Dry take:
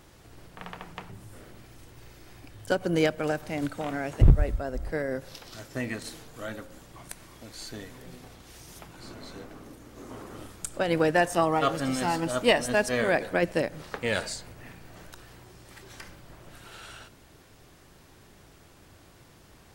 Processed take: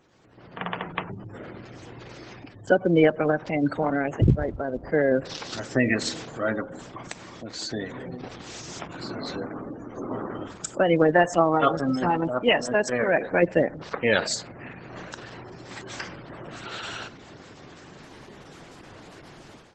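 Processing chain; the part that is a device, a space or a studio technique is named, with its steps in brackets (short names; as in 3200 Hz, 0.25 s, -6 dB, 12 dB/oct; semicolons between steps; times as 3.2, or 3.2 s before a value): noise-suppressed video call (HPF 130 Hz 12 dB/oct; spectral gate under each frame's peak -20 dB strong; AGC gain up to 16.5 dB; gain -4.5 dB; Opus 12 kbps 48000 Hz)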